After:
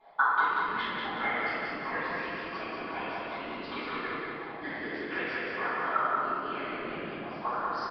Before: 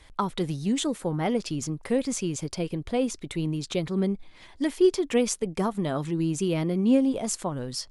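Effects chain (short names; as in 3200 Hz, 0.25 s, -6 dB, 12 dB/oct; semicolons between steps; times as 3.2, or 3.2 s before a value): 5.68–7.36 expander -21 dBFS; HPF 340 Hz 6 dB/oct; comb 2.9 ms, depth 53%; compressor 2.5:1, threshold -31 dBFS, peak gain reduction 11.5 dB; auto-wah 670–1700 Hz, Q 6.1, up, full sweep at -29 dBFS; whisperiser; feedback echo 0.185 s, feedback 53%, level -3 dB; reverb RT60 2.0 s, pre-delay 4 ms, DRR -12 dB; downsampling 11025 Hz; 0.44–1.24 core saturation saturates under 680 Hz; gain +5 dB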